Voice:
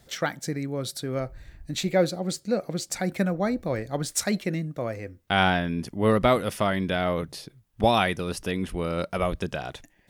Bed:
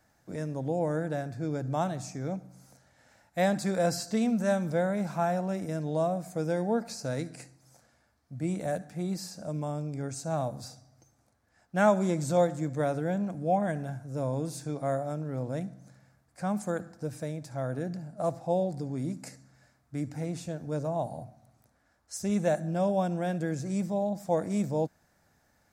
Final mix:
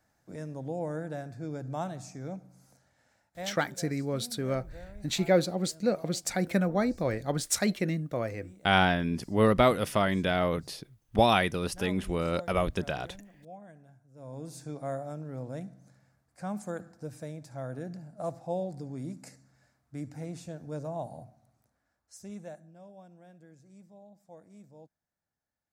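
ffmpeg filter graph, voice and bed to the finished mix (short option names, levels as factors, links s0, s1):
-filter_complex "[0:a]adelay=3350,volume=0.841[s0];[1:a]volume=3.55,afade=t=out:st=2.82:d=0.85:silence=0.158489,afade=t=in:st=14.15:d=0.45:silence=0.158489,afade=t=out:st=21.2:d=1.52:silence=0.112202[s1];[s0][s1]amix=inputs=2:normalize=0"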